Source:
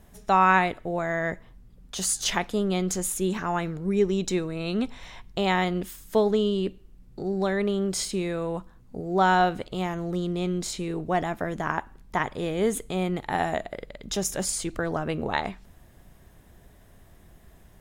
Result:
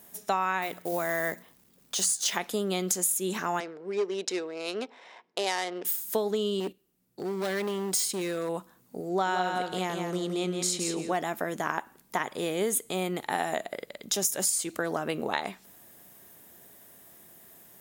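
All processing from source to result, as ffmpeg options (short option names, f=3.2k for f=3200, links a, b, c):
-filter_complex "[0:a]asettb=1/sr,asplit=3[a][b][c];[a]atrim=end=0.624[d];[b]atrim=start=0.62:end=2.36,asetpts=PTS-STARTPTS,afade=t=in:d=0.004:c=qsin,afade=t=out:st=1.736:d=0.004:c=qsin,lowpass=9.1k,bandreject=f=60:t=h:w=6,bandreject=f=120:t=h:w=6,bandreject=f=180:t=h:w=6,bandreject=f=240:t=h:w=6,acrusher=bits=6:mode=log:mix=0:aa=0.000001[e];[c]atrim=start=2.356[f];[d][e]acrossfade=d=0.004:c1=hsin:c2=qsin[g];[g][f]acrossfade=d=0.004:c1=qsin:c2=hsin,asettb=1/sr,asplit=3[h][i][j];[h]atrim=end=3.604[k];[i]atrim=start=3.6:end=5.85,asetpts=PTS-STARTPTS,afade=t=in:d=0.004:c=qsin,afade=t=out:st=2.246:d=0.004:c=qsin,asoftclip=type=hard:threshold=-17dB,adynamicsmooth=sensitivity=4:basefreq=1.5k,highpass=440,equalizer=f=440:t=q:w=4:g=4,equalizer=f=1.2k:t=q:w=4:g=-3,equalizer=f=5.1k:t=q:w=4:g=6,lowpass=f=9.3k:w=0.5412,lowpass=f=9.3k:w=1.3066[l];[j]atrim=start=5.846[m];[k][l]acrossfade=d=0.004:c1=hsin:c2=qsin[n];[n][m]acrossfade=d=0.004:c1=qsin:c2=hsin,asettb=1/sr,asplit=3[o][p][q];[o]atrim=end=6.604[r];[p]atrim=start=6.6:end=8.49,asetpts=PTS-STARTPTS,afade=t=in:d=0.004:c=qsin,afade=t=out:st=1.886:d=0.004:c=qsin,agate=range=-10dB:threshold=-39dB:ratio=16:release=100:detection=peak,volume=25.5dB,asoftclip=hard,volume=-25.5dB[s];[q]atrim=start=8.486[t];[r][s]acrossfade=d=0.004:c1=hsin:c2=qsin[u];[u][t]acrossfade=d=0.004:c1=qsin:c2=hsin,asettb=1/sr,asplit=3[v][w][x];[v]atrim=end=9.094[y];[w]atrim=start=9.09:end=11.13,asetpts=PTS-STARTPTS,afade=t=in:d=0.004:c=qsin,afade=t=out:st=2.036:d=0.004:c=qsin,lowpass=10k,aecho=1:1:169|338|507:0.501|0.0852|0.0145,atrim=end_sample=89964[z];[x]atrim=start=11.126[aa];[y][z]acrossfade=d=0.004:c1=hsin:c2=qsin[ab];[ab][aa]acrossfade=d=0.004:c1=qsin:c2=hsin,highpass=230,aemphasis=mode=production:type=50fm,acompressor=threshold=-24dB:ratio=6"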